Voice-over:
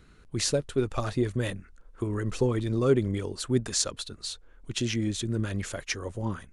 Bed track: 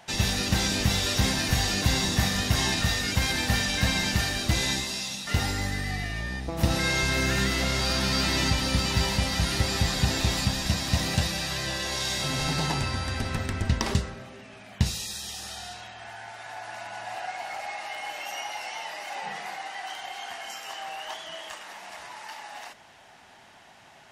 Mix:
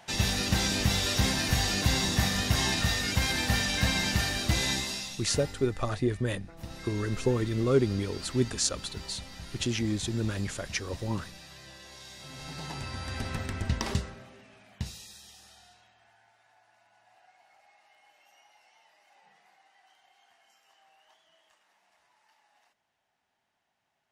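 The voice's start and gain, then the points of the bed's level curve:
4.85 s, -1.0 dB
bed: 4.9 s -2 dB
5.68 s -18.5 dB
12.16 s -18.5 dB
13.21 s -4.5 dB
13.95 s -4.5 dB
16.76 s -27 dB

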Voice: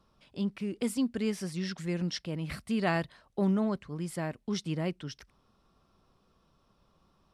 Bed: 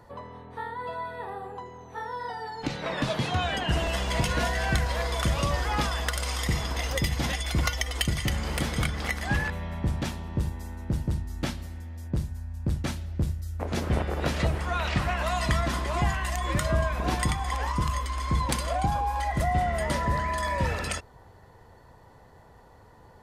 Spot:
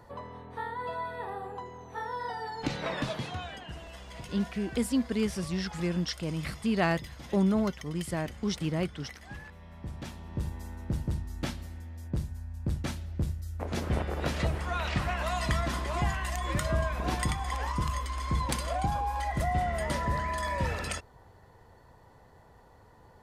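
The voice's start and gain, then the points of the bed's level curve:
3.95 s, +2.0 dB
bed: 2.84 s -1 dB
3.77 s -17.5 dB
9.5 s -17.5 dB
10.55 s -3.5 dB

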